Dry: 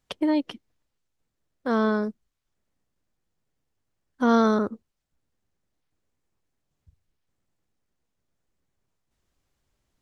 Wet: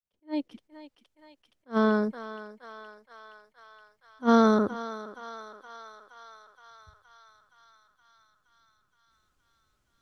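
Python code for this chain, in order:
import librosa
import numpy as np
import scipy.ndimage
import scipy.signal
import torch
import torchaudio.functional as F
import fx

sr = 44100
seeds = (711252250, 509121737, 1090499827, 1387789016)

y = fx.fade_in_head(x, sr, length_s=0.7)
y = fx.echo_thinned(y, sr, ms=470, feedback_pct=76, hz=650.0, wet_db=-12.0)
y = fx.attack_slew(y, sr, db_per_s=360.0)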